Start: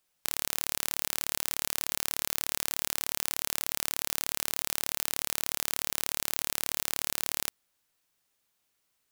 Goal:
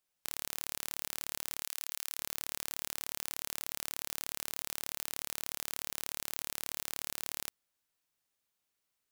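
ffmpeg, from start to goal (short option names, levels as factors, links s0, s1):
-filter_complex "[0:a]asettb=1/sr,asplit=3[s0][s1][s2];[s0]atrim=end=1.624[s3];[s1]atrim=start=1.62:end=2.18,asetpts=PTS-STARTPTS,afade=t=in:d=0.004:c=qsin,afade=t=out:st=0.556:d=0.004:c=qsin,highpass=f=1400:p=1[s4];[s2]atrim=start=2.176[s5];[s3][s4]acrossfade=d=0.004:c1=hsin:c2=qsin[s6];[s6][s5]acrossfade=d=0.004:c1=qsin:c2=hsin,volume=0.422"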